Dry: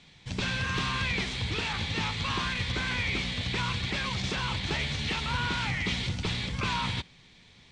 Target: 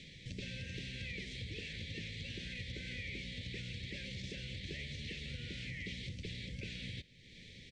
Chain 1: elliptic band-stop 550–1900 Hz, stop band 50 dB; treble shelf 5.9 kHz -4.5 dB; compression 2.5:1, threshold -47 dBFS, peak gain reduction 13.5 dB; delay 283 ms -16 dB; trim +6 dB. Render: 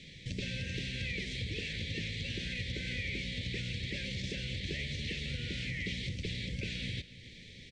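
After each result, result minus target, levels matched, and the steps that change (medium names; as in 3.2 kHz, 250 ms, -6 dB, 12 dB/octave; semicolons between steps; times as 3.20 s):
compression: peak gain reduction -6.5 dB; echo-to-direct +8 dB
change: compression 2.5:1, threshold -57.5 dBFS, peak gain reduction 19.5 dB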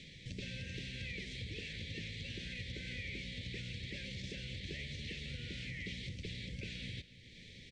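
echo-to-direct +8 dB
change: delay 283 ms -24 dB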